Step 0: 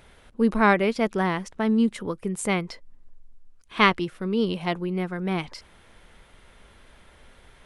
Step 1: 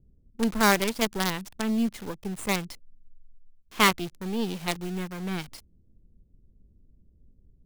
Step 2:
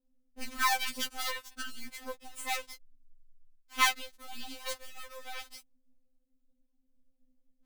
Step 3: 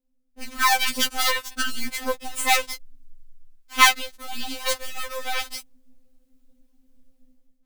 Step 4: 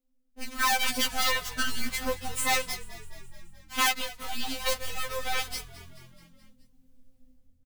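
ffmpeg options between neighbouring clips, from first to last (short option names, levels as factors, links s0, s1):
-filter_complex "[0:a]acrossover=split=300[s0][s1];[s1]acrusher=bits=4:dc=4:mix=0:aa=0.000001[s2];[s0][s2]amix=inputs=2:normalize=0,adynamicequalizer=threshold=0.0158:dfrequency=2500:dqfactor=0.7:tfrequency=2500:tqfactor=0.7:attack=5:release=100:ratio=0.375:range=2:mode=boostabove:tftype=highshelf,volume=0.708"
-af "aeval=exprs='if(lt(val(0),0),0.708*val(0),val(0))':c=same,lowshelf=f=390:g=-11,afftfilt=real='re*3.46*eq(mod(b,12),0)':imag='im*3.46*eq(mod(b,12),0)':win_size=2048:overlap=0.75"
-af "dynaudnorm=f=270:g=5:m=5.62"
-filter_complex "[0:a]volume=9.44,asoftclip=hard,volume=0.106,asplit=6[s0][s1][s2][s3][s4][s5];[s1]adelay=214,afreqshift=-43,volume=0.126[s6];[s2]adelay=428,afreqshift=-86,volume=0.0759[s7];[s3]adelay=642,afreqshift=-129,volume=0.0452[s8];[s4]adelay=856,afreqshift=-172,volume=0.0272[s9];[s5]adelay=1070,afreqshift=-215,volume=0.0164[s10];[s0][s6][s7][s8][s9][s10]amix=inputs=6:normalize=0,volume=0.841"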